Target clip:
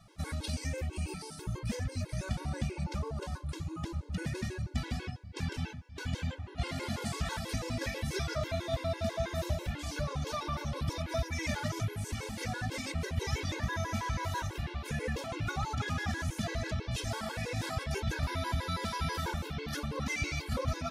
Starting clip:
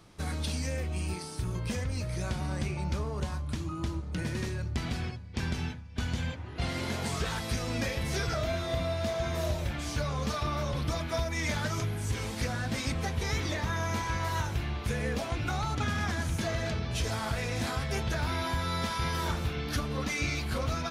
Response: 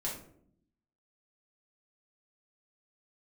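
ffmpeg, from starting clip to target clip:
-af "afftfilt=real='re*gt(sin(2*PI*6.1*pts/sr)*(1-2*mod(floor(b*sr/1024/280),2)),0)':imag='im*gt(sin(2*PI*6.1*pts/sr)*(1-2*mod(floor(b*sr/1024/280),2)),0)':win_size=1024:overlap=0.75"

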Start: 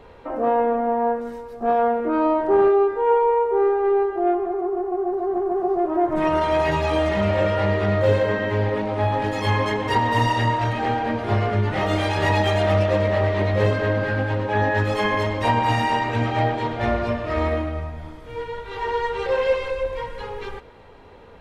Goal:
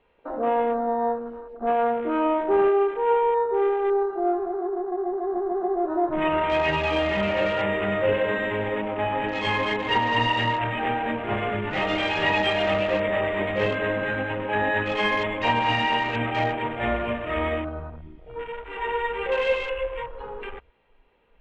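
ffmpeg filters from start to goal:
-af "lowpass=f=2.8k:t=q:w=2.9,equalizer=f=96:t=o:w=0.36:g=-13.5,afwtdn=0.0251,volume=-3.5dB"

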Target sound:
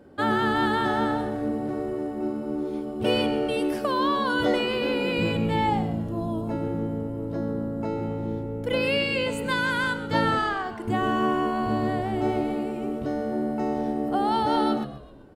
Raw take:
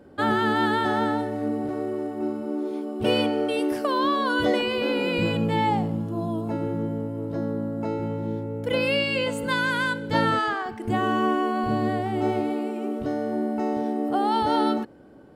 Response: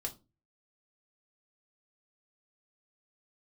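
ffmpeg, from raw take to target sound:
-filter_complex "[0:a]asplit=5[a][b][c][d][e];[b]adelay=130,afreqshift=-81,volume=-14dB[f];[c]adelay=260,afreqshift=-162,volume=-20.7dB[g];[d]adelay=390,afreqshift=-243,volume=-27.5dB[h];[e]adelay=520,afreqshift=-324,volume=-34.2dB[i];[a][f][g][h][i]amix=inputs=5:normalize=0,volume=-1dB"

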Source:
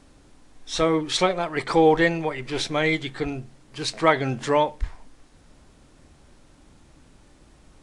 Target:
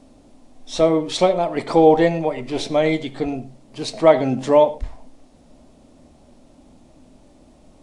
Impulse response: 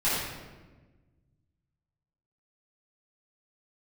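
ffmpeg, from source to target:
-filter_complex "[0:a]equalizer=f=250:t=o:w=0.67:g=10,equalizer=f=630:t=o:w=0.67:g=11,equalizer=f=1.6k:t=o:w=0.67:g=-7,asplit=2[a][b];[1:a]atrim=start_sample=2205,afade=t=out:st=0.17:d=0.01,atrim=end_sample=7938[c];[b][c]afir=irnorm=-1:irlink=0,volume=-23.5dB[d];[a][d]amix=inputs=2:normalize=0,volume=-1.5dB"

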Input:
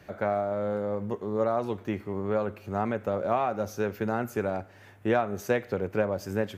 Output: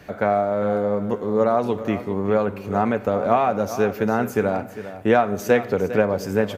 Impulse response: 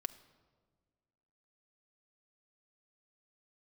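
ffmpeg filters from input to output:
-filter_complex "[0:a]aecho=1:1:403:0.224,asplit=2[a][b];[1:a]atrim=start_sample=2205[c];[b][c]afir=irnorm=-1:irlink=0,volume=5dB[d];[a][d]amix=inputs=2:normalize=0"

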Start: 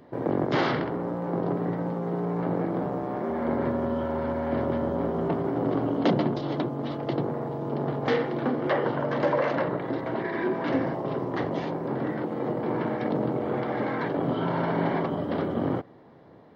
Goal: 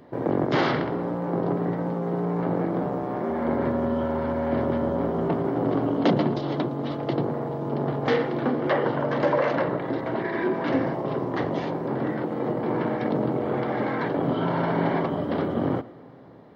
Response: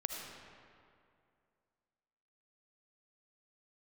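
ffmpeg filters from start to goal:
-filter_complex "[0:a]asplit=2[a][b];[1:a]atrim=start_sample=2205,adelay=113[c];[b][c]afir=irnorm=-1:irlink=0,volume=-20dB[d];[a][d]amix=inputs=2:normalize=0,volume=2dB"

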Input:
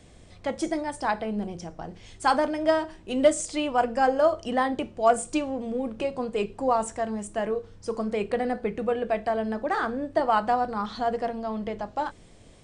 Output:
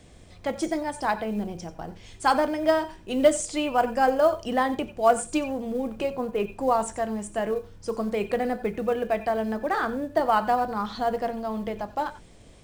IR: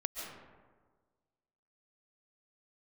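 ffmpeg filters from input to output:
-filter_complex "[0:a]asettb=1/sr,asplit=3[a][b][c];[a]atrim=end=6.104[d];[b]atrim=start=6.1:end=6.52,asetpts=PTS-STARTPTS,afade=t=in:d=0.004:c=qsin,afade=t=out:st=0.416:d=0.004:c=qsin,lowpass=2.6k[e];[c]atrim=start=6.516[f];[d][e]acrossfade=d=0.004:c1=hsin:c2=qsin[g];[g][f]acrossfade=d=0.004:c1=qsin:c2=hsin,acrusher=bits=8:mode=log:mix=0:aa=0.000001[h];[1:a]atrim=start_sample=2205,afade=t=out:st=0.17:d=0.01,atrim=end_sample=7938,asetrate=57330,aresample=44100[i];[h][i]afir=irnorm=-1:irlink=0,volume=4.5dB"

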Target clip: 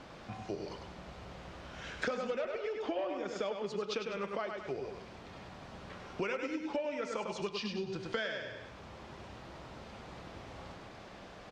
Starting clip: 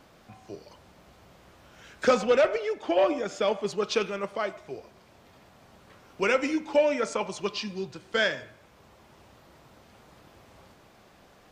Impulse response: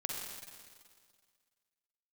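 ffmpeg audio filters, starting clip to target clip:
-filter_complex "[0:a]lowpass=5.5k,asplit=2[a][b];[b]aecho=0:1:100|200|300|400:0.501|0.15|0.0451|0.0135[c];[a][c]amix=inputs=2:normalize=0,acompressor=threshold=-39dB:ratio=8,volume=5dB"

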